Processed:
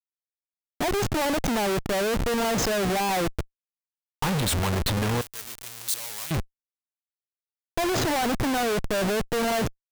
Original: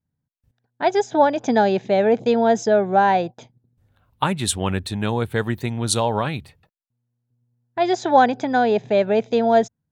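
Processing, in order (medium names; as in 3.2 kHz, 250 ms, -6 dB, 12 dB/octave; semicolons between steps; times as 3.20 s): Schmitt trigger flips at -33 dBFS; 5.21–6.31 s: pre-emphasis filter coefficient 0.97; trim -3.5 dB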